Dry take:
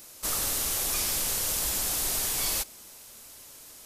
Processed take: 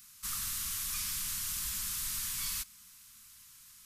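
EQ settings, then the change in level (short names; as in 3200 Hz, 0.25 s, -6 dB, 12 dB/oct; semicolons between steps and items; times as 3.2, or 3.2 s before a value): inverse Chebyshev band-stop 320–730 Hz, stop band 40 dB; -7.5 dB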